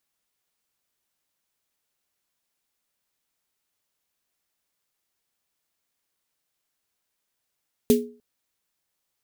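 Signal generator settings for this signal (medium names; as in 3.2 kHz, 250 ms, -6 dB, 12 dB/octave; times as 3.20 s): snare drum length 0.30 s, tones 240 Hz, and 420 Hz, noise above 2.3 kHz, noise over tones -11 dB, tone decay 0.38 s, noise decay 0.20 s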